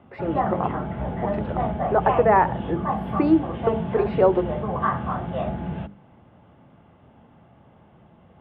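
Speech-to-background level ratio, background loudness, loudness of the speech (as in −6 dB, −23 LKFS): 4.0 dB, −27.5 LKFS, −23.5 LKFS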